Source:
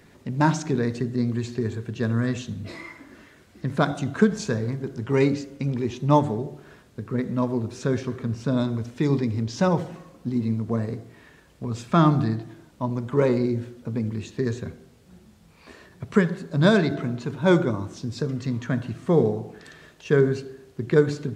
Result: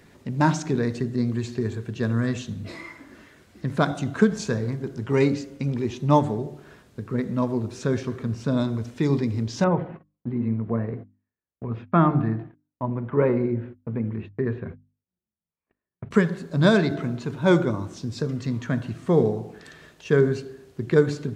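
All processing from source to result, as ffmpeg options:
-filter_complex "[0:a]asettb=1/sr,asplit=3[a][b][c];[a]atrim=end=9.644[d];[b]atrim=start=9.64:end=16.11,asetpts=PTS-STARTPTS,afade=t=in:d=0.004:c=qsin,afade=t=out:st=6.466:d=0.004:c=qsin,lowpass=f=2.4k:w=0.5412,lowpass=f=2.4k:w=1.3066,agate=range=-41dB:threshold=-41dB:ratio=16:release=100:detection=peak,bandreject=f=50:t=h:w=6,bandreject=f=100:t=h:w=6,bandreject=f=150:t=h:w=6,bandreject=f=200:t=h:w=6,bandreject=f=250:t=h:w=6,bandreject=f=300:t=h:w=6[e];[c]atrim=start=16.106[f];[d][e]acrossfade=d=0.004:c1=hsin:c2=qsin[g];[g][f]acrossfade=d=0.004:c1=qsin:c2=hsin"

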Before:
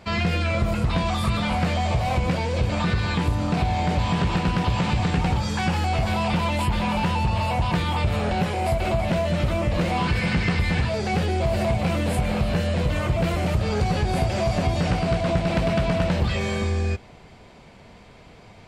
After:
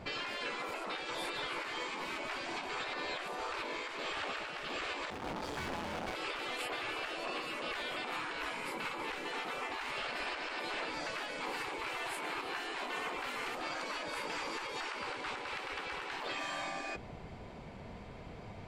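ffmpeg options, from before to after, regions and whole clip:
-filter_complex "[0:a]asettb=1/sr,asplit=3[a][b][c];[a]atrim=end=5.104[d];[b]atrim=start=5.1:end=6.15,asetpts=PTS-STARTPTS,afade=t=in:d=0.004:c=qsin,afade=t=out:st=1.046:d=0.004:c=qsin,highshelf=f=9.4k:g=-9.5,volume=32.5dB,asoftclip=hard,volume=-32.5dB[e];[c]atrim=start=6.146[f];[d][e]acrossfade=d=0.004:c1=hsin:c2=qsin[g];[g][f]acrossfade=d=0.004:c1=qsin:c2=hsin,highshelf=f=2.6k:g=-9,afftfilt=real='re*lt(hypot(re,im),0.0891)':imag='im*lt(hypot(re,im),0.0891)':win_size=1024:overlap=0.75,alimiter=level_in=4.5dB:limit=-24dB:level=0:latency=1:release=260,volume=-4.5dB"

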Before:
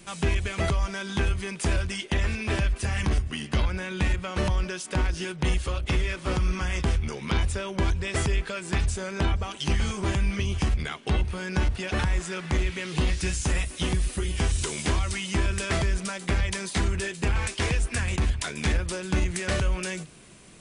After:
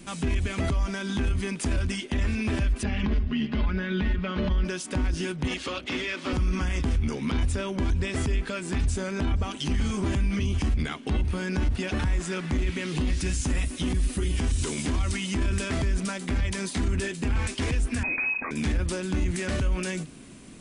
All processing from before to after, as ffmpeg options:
-filter_complex "[0:a]asettb=1/sr,asplit=3[a][b][c];[a]atrim=end=2.834[d];[b]atrim=start=2.83:end=4.65,asetpts=PTS-STARTPTS,afade=t=in:d=0.004:c=qsin,afade=t=out:st=1.816:d=0.004:c=qsin,lowpass=f=4.2k:w=0.5412,lowpass=f=4.2k:w=1.3066,aecho=1:1:4.8:0.71,atrim=end_sample=80262[e];[c]atrim=start=4.646[f];[d][e]acrossfade=d=0.004:c1=hsin:c2=qsin[g];[g][f]acrossfade=d=0.004:c1=qsin:c2=hsin,asettb=1/sr,asplit=3[h][i][j];[h]atrim=end=5.474[k];[i]atrim=start=5.47:end=6.33,asetpts=PTS-STARTPTS,afade=t=in:d=0.004:c=qsin,afade=t=out:st=0.856:d=0.004:c=qsin,highpass=260,lowpass=4.4k,highshelf=f=2.1k:g=10[l];[j]atrim=start=6.326[m];[k][l]acrossfade=d=0.004:c1=hsin:c2=qsin[n];[n][m]acrossfade=d=0.004:c1=qsin:c2=hsin,asettb=1/sr,asplit=3[o][p][q];[o]atrim=end=18.034[r];[p]atrim=start=18.03:end=18.51,asetpts=PTS-STARTPTS,afade=t=in:d=0.004:c=qsin,afade=t=out:st=0.476:d=0.004:c=qsin,asplit=2[s][t];[t]adelay=35,volume=-11dB[u];[s][u]amix=inputs=2:normalize=0,atrim=end_sample=21168,lowpass=f=2.2k:t=q:w=0.5098,lowpass=f=2.2k:t=q:w=0.6013,lowpass=f=2.2k:t=q:w=0.9,lowpass=f=2.2k:t=q:w=2.563,afreqshift=-2600[v];[q]atrim=start=18.506[w];[r][v]acrossfade=d=0.004:c1=hsin:c2=qsin[x];[x][w]acrossfade=d=0.004:c1=qsin:c2=hsin,equalizer=f=260:t=o:w=0.42:g=13.5,alimiter=limit=-21dB:level=0:latency=1:release=34,lowshelf=f=180:g=4.5"

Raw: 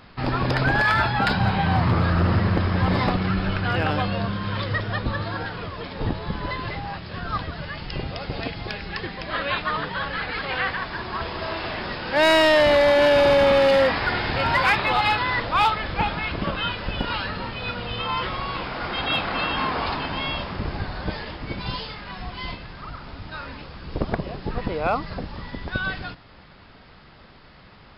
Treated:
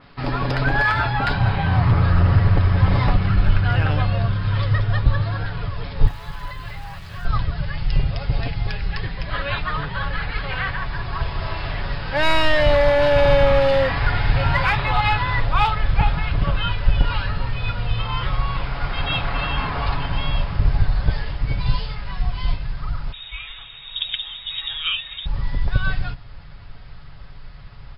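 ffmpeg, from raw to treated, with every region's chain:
-filter_complex "[0:a]asettb=1/sr,asplit=3[a][b][c];[a]atrim=end=6.074[d];[b]atrim=start=6.07:end=7.25,asetpts=PTS-STARTPTS,afade=t=in:d=0.004:c=qsin,afade=t=out:st=1.176:d=0.004:c=qsin,acrusher=bits=8:dc=4:mix=0:aa=0.000001,bandreject=f=60:t=h:w=6,bandreject=f=120:t=h:w=6,bandreject=f=180:t=h:w=6,bandreject=f=240:t=h:w=6,bandreject=f=300:t=h:w=6,bandreject=f=360:t=h:w=6,bandreject=f=420:t=h:w=6,bandreject=f=480:t=h:w=6,bandreject=f=540:t=h:w=6,bandreject=f=600:t=h:w=6,acrossover=split=790|4600[e][f][g];[e]acompressor=threshold=-42dB:ratio=4[h];[f]acompressor=threshold=-35dB:ratio=4[i];[g]acompressor=threshold=-56dB:ratio=4[j];[h][i][j]amix=inputs=3:normalize=0[k];[c]atrim=start=7.246[l];[d][k]acrossfade=d=0.004:c1=hsin:c2=qsin[m];[m][l]acrossfade=d=0.004:c1=qsin:c2=hsin,asettb=1/sr,asplit=3[n][o][p];[n]atrim=end=23.124[q];[o]atrim=start=23.12:end=25.26,asetpts=PTS-STARTPTS,afade=t=in:d=0.004:c=qsin,afade=t=out:st=2.136:d=0.004:c=qsin,lowpass=f=3.2k:t=q:w=0.5098,lowpass=f=3.2k:t=q:w=0.6013,lowpass=f=3.2k:t=q:w=0.9,lowpass=f=3.2k:t=q:w=2.563,afreqshift=-3800,lowshelf=f=160:g=10.5[r];[p]atrim=start=25.256[s];[q][r]acrossfade=d=0.004:c1=hsin:c2=qsin[t];[t][s]acrossfade=d=0.004:c1=qsin:c2=hsin,asubboost=boost=10:cutoff=86,aecho=1:1:7.1:0.45,adynamicequalizer=threshold=0.01:dfrequency=4700:dqfactor=0.7:tfrequency=4700:tqfactor=0.7:attack=5:release=100:ratio=0.375:range=4:mode=cutabove:tftype=highshelf,volume=-1dB"

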